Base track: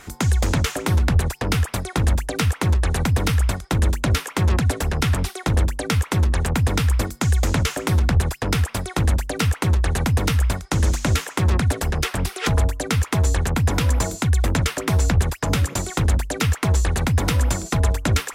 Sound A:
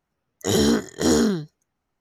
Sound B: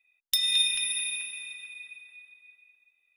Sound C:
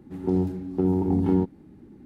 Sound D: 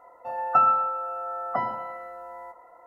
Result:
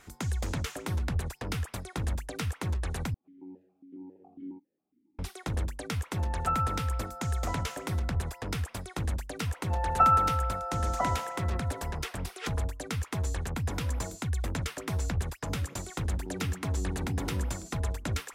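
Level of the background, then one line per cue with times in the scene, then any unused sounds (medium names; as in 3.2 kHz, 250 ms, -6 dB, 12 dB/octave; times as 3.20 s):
base track -12.5 dB
3.14 s: replace with C -15 dB + stepped vowel filter 7.3 Hz
5.92 s: add D -10.5 dB
9.45 s: add D -2.5 dB
15.99 s: add C -11 dB + peak limiter -20 dBFS
not used: A, B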